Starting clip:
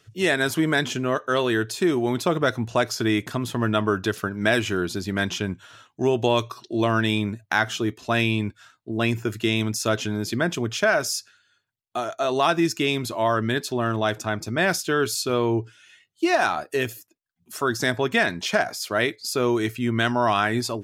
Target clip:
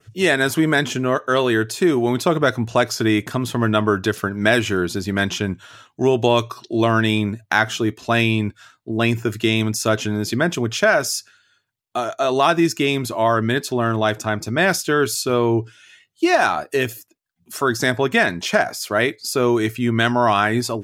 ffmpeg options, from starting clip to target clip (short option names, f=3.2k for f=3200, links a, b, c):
-af "adynamicequalizer=threshold=0.0112:dfrequency=4000:dqfactor=1.2:tfrequency=4000:tqfactor=1.2:attack=5:release=100:ratio=0.375:range=2:mode=cutabove:tftype=bell,volume=4.5dB"